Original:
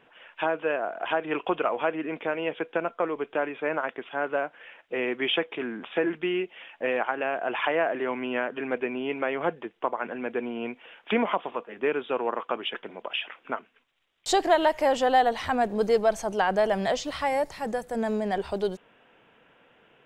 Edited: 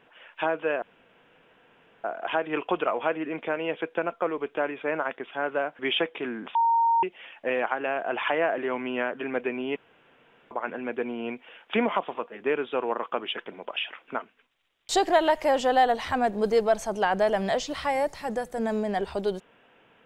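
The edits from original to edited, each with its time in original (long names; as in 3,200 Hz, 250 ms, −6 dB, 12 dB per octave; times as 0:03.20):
0:00.82: splice in room tone 1.22 s
0:04.57–0:05.16: remove
0:05.92–0:06.40: beep over 923 Hz −18.5 dBFS
0:09.13–0:09.88: fill with room tone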